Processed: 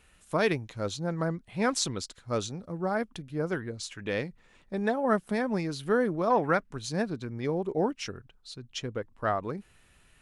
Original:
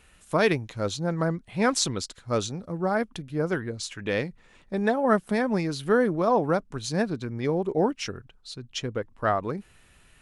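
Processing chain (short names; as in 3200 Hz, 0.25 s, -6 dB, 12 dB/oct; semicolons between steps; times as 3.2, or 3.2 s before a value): 6.3–6.71 bell 1900 Hz +13 dB 1.2 oct; gain -4 dB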